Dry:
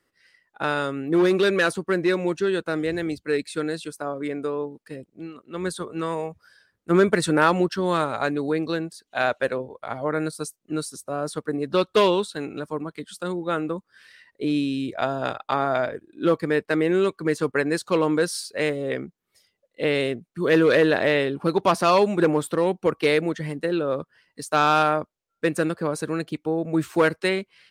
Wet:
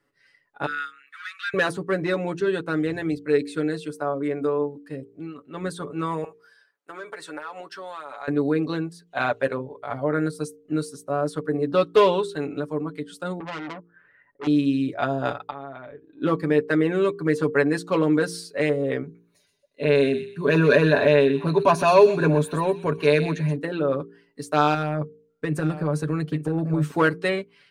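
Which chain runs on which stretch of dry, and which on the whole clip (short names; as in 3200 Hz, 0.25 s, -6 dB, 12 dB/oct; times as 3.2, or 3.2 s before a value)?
0.66–1.54 steep high-pass 1300 Hz 72 dB/oct + tilt -2.5 dB/oct
6.24–8.28 HPF 680 Hz + compressor 5:1, threshold -33 dBFS
13.4–14.47 LPF 1700 Hz 24 dB/oct + notch 1100 Hz, Q 16 + core saturation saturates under 3300 Hz
15.5–16.22 compressor 2:1, threshold -47 dBFS + brick-wall FIR low-pass 4500 Hz
19.02–23.56 ripple EQ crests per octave 1.5, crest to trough 10 dB + transient shaper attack -2 dB, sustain +2 dB + thin delay 0.126 s, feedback 31%, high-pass 2200 Hz, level -8.5 dB
24.74–26.91 bell 150 Hz +9.5 dB 0.24 oct + compressor, threshold -21 dBFS + echo 0.883 s -10.5 dB
whole clip: high shelf 2600 Hz -8 dB; comb 7 ms, depth 69%; de-hum 57.3 Hz, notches 8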